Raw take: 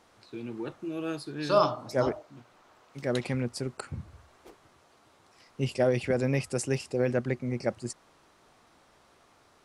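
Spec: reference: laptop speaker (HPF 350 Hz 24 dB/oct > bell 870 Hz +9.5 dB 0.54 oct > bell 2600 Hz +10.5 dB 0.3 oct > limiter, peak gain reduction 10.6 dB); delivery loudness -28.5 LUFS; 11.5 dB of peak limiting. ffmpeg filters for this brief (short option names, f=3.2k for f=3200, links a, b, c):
-af "alimiter=limit=-22dB:level=0:latency=1,highpass=f=350:w=0.5412,highpass=f=350:w=1.3066,equalizer=f=870:t=o:w=0.54:g=9.5,equalizer=f=2.6k:t=o:w=0.3:g=10.5,volume=9.5dB,alimiter=limit=-17.5dB:level=0:latency=1"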